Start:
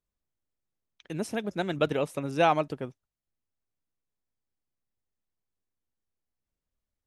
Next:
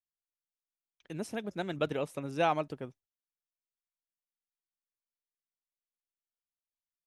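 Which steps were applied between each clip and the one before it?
gate with hold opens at -44 dBFS; gain -5.5 dB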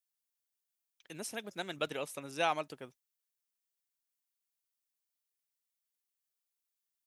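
tilt +3 dB/oct; gain -2.5 dB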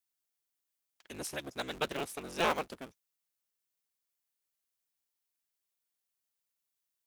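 cycle switcher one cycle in 3, inverted; gain +1.5 dB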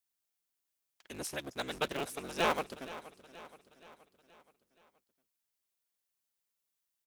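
feedback echo 0.474 s, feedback 52%, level -16 dB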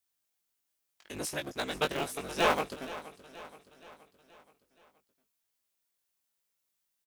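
doubler 20 ms -4.5 dB; gain +2.5 dB

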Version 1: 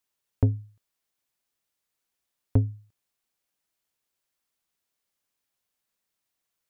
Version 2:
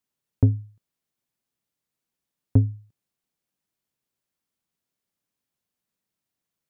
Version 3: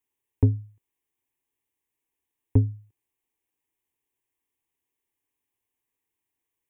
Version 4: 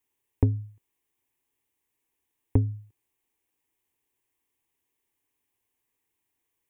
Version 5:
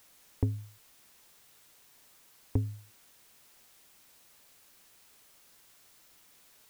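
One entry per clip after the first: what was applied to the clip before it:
bell 170 Hz +11 dB 2.3 oct; gain -4 dB
fixed phaser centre 920 Hz, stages 8; gain +2.5 dB
compressor, threshold -22 dBFS, peak gain reduction 8.5 dB; gain +4 dB
added noise white -54 dBFS; gain -7 dB

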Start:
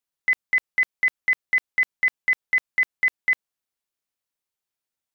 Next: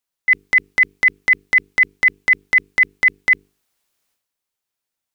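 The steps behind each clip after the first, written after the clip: notches 50/100/150/200/250/300/350/400/450 Hz; dynamic EQ 2300 Hz, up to +7 dB, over -33 dBFS, Q 1.5; transient shaper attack -6 dB, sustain +11 dB; gain +4.5 dB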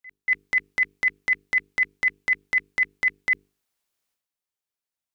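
pre-echo 0.237 s -23 dB; gain -8 dB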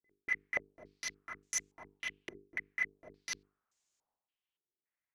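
wrapped overs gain 24 dB; stepped low-pass 3.5 Hz 380–6900 Hz; gain -5.5 dB

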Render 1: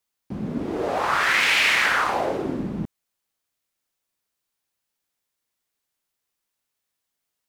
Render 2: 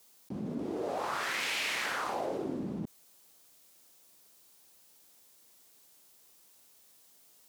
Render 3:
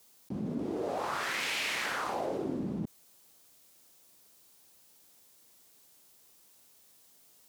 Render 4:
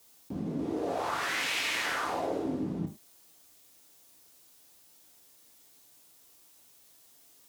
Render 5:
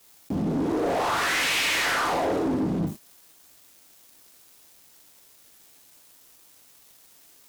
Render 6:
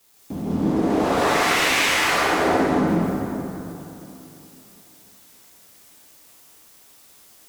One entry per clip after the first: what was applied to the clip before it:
HPF 230 Hz 6 dB/oct; bell 1800 Hz -8.5 dB 2.1 oct; fast leveller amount 50%; gain -8 dB
low shelf 220 Hz +4 dB
non-linear reverb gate 0.13 s falling, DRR 2.5 dB
sample leveller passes 3
plate-style reverb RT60 3.1 s, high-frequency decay 0.6×, pre-delay 0.115 s, DRR -7.5 dB; gain -3 dB

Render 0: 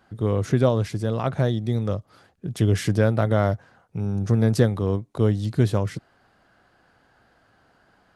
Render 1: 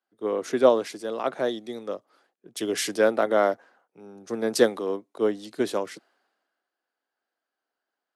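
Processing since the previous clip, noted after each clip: HPF 290 Hz 24 dB/oct; three-band expander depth 70%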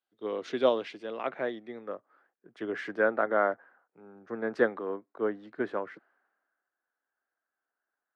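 low-pass sweep 3700 Hz -> 1600 Hz, 0.44–2.01; gain -7 dB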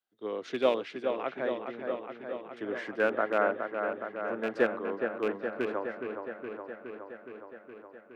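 rattling part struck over -35 dBFS, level -27 dBFS; dark delay 0.417 s, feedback 72%, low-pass 2500 Hz, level -6 dB; gain -1.5 dB

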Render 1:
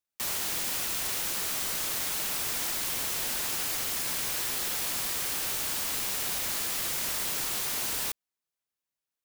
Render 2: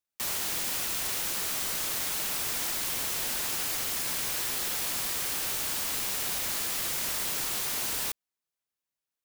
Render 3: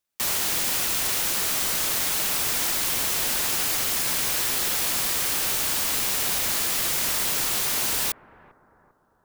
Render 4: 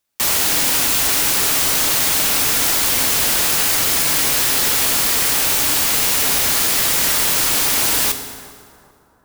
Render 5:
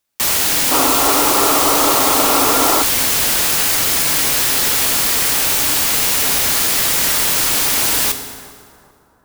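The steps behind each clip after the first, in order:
nothing audible
analogue delay 0.396 s, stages 4096, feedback 46%, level -17.5 dB; gain +6.5 dB
reverb RT60 1.8 s, pre-delay 4 ms, DRR 7 dB; gain +7.5 dB
spectral gain 0.71–2.83, 240–1400 Hz +11 dB; gain +1 dB

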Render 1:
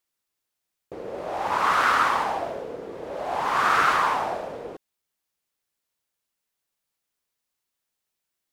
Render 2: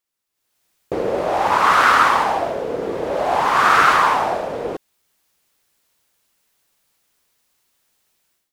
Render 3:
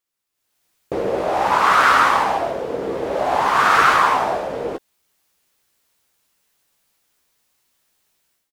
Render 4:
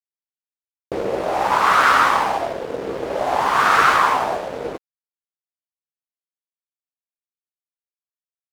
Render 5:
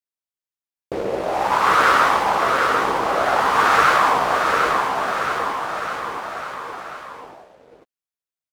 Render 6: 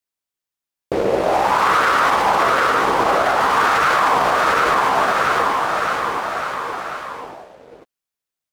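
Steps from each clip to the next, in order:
AGC gain up to 16.5 dB; gain -1 dB
doubler 15 ms -8 dB; gain -1 dB
crossover distortion -35 dBFS
bouncing-ball echo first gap 0.75 s, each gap 0.9×, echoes 5; gain -1 dB
limiter -13 dBFS, peak gain reduction 10.5 dB; gain +6 dB

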